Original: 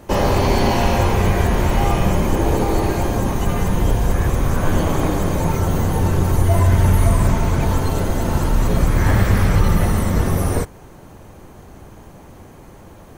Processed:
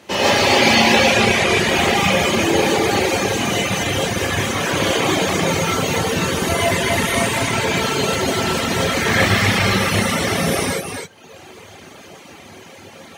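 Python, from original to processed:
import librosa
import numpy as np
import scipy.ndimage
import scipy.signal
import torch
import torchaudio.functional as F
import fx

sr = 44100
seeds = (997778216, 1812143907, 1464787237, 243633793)

y = fx.cvsd(x, sr, bps=64000, at=(1.0, 1.59))
y = scipy.signal.sosfilt(scipy.signal.butter(2, 92.0, 'highpass', fs=sr, output='sos'), y)
y = fx.high_shelf(y, sr, hz=9900.0, db=-4.0)
y = y + 10.0 ** (-5.0 / 20.0) * np.pad(y, (int(263 * sr / 1000.0), 0))[:len(y)]
y = fx.rev_gated(y, sr, seeds[0], gate_ms=180, shape='rising', drr_db=-8.0)
y = fx.dereverb_blind(y, sr, rt60_s=0.81)
y = fx.weighting(y, sr, curve='D')
y = y * librosa.db_to_amplitude(-4.0)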